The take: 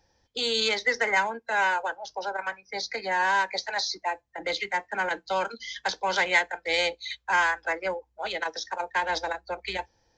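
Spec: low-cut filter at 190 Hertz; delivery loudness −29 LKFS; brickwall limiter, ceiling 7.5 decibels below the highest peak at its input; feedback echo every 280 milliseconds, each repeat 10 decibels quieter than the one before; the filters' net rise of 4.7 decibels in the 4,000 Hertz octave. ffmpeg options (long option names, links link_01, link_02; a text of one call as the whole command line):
ffmpeg -i in.wav -af "highpass=190,equalizer=frequency=4000:width_type=o:gain=5.5,alimiter=limit=-16dB:level=0:latency=1,aecho=1:1:280|560|840|1120:0.316|0.101|0.0324|0.0104,volume=-1.5dB" out.wav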